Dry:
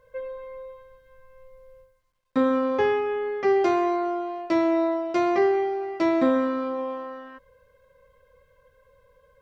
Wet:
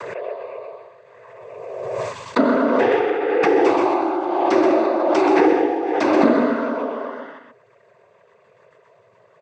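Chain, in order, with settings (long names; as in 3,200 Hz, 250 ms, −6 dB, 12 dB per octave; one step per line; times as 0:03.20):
cochlear-implant simulation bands 16
single-tap delay 127 ms −5 dB
background raised ahead of every attack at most 27 dB per second
level +4 dB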